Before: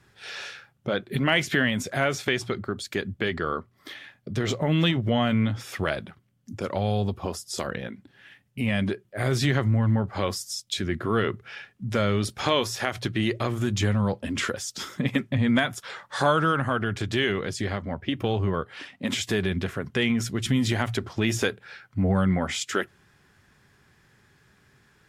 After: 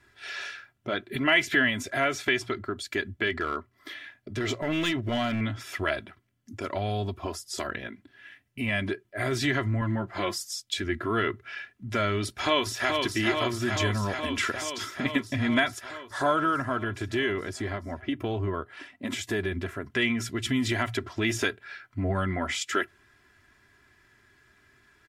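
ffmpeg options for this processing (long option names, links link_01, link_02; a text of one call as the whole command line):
ffmpeg -i in.wav -filter_complex "[0:a]asettb=1/sr,asplit=3[link_01][link_02][link_03];[link_01]atrim=end=3.304[link_04];[link_02]atrim=start=3.3:end=5.41,asetpts=PTS-STARTPTS,afade=type=in:duration=0.004:curve=qsin,afade=type=out:start_time=2.106:duration=0.004:curve=qsin,asoftclip=type=hard:threshold=-18.5dB[link_05];[link_03]atrim=start=5.406[link_06];[link_04][link_05]acrossfade=duration=0.004:curve1=hsin:curve2=qsin[link_07];[link_07][link_06]acrossfade=duration=0.004:curve1=qsin:curve2=hsin,asettb=1/sr,asplit=3[link_08][link_09][link_10];[link_08]atrim=end=9.814[link_11];[link_09]atrim=start=9.81:end=10.59,asetpts=PTS-STARTPTS,afade=type=in:duration=0.004:curve=qsin,afade=type=out:start_time=0.776:duration=0.004:curve=qsin,aecho=1:1:5.8:0.59,atrim=end_sample=34398[link_12];[link_10]atrim=start=10.586[link_13];[link_11][link_12]acrossfade=duration=0.004:curve1=hsin:curve2=qsin[link_14];[link_14][link_13]acrossfade=duration=0.004:curve1=qsin:curve2=hsin,asplit=2[link_15][link_16];[link_16]afade=type=in:start_time=12.23:duration=0.01,afade=type=out:start_time=12.97:duration=0.01,aecho=0:1:430|860|1290|1720|2150|2580|3010|3440|3870|4300|4730|5160:0.630957|0.504766|0.403813|0.32305|0.25844|0.206752|0.165402|0.132321|0.105857|0.0846857|0.0677485|0.0541988[link_17];[link_15][link_17]amix=inputs=2:normalize=0,asettb=1/sr,asplit=3[link_18][link_19][link_20];[link_18]atrim=end=15.844[link_21];[link_19]atrim=start=15.84:end=19.9,asetpts=PTS-STARTPTS,afade=type=in:duration=0.004:curve=qsin,afade=type=out:start_time=4.056:duration=0.004:curve=qsin,equalizer=frequency=3200:width=0.56:gain=-6[link_22];[link_20]atrim=start=19.896[link_23];[link_21][link_22]acrossfade=duration=0.004:curve1=hsin:curve2=qsin[link_24];[link_24][link_23]acrossfade=duration=0.004:curve1=qsin:curve2=hsin,equalizer=frequency=1900:width_type=o:width=1.2:gain=5,aecho=1:1:3:0.66,volume=-4.5dB" out.wav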